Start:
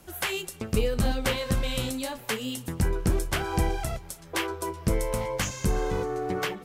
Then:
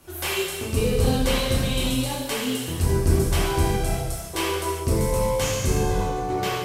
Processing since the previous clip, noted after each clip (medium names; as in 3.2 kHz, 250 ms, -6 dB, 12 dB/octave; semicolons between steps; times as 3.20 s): dynamic bell 1.6 kHz, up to -5 dB, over -45 dBFS, Q 1.1; gated-style reverb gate 440 ms falling, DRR -7.5 dB; trim -2 dB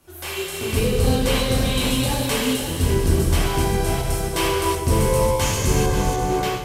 backward echo that repeats 268 ms, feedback 60%, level -7 dB; level rider; trim -5 dB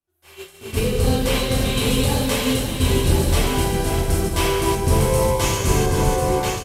delay 1043 ms -4 dB; expander -18 dBFS